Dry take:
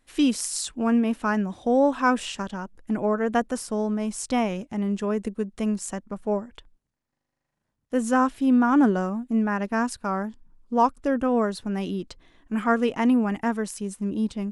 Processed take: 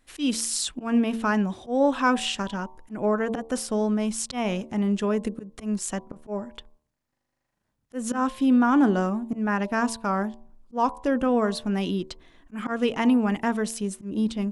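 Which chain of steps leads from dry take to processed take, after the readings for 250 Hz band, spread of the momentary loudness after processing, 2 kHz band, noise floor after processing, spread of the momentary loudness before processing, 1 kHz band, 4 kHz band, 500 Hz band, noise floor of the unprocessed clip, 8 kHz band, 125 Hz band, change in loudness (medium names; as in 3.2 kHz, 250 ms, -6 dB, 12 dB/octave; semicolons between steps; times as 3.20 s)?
-1.0 dB, 13 LU, 0.0 dB, -79 dBFS, 11 LU, -1.5 dB, +4.0 dB, -1.0 dB, -81 dBFS, +2.0 dB, no reading, -0.5 dB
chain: slow attack 166 ms; dynamic bell 3.4 kHz, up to +5 dB, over -51 dBFS, Q 1.7; in parallel at -1.5 dB: peak limiter -19.5 dBFS, peak gain reduction 10.5 dB; on the sum: de-hum 75.5 Hz, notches 15; trim -3 dB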